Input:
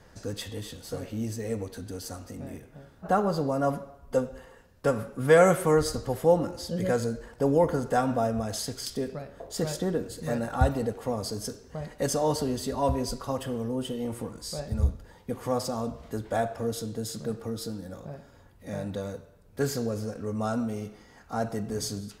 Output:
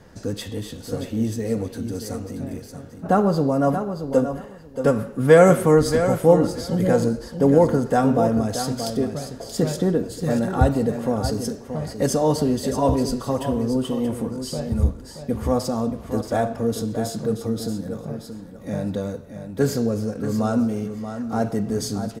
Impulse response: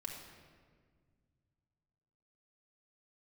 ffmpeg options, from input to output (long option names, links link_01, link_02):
-filter_complex "[0:a]equalizer=frequency=230:width_type=o:width=2.2:gain=6.5,asplit=2[link_01][link_02];[link_02]aecho=0:1:629|1258:0.355|0.0568[link_03];[link_01][link_03]amix=inputs=2:normalize=0,volume=3dB"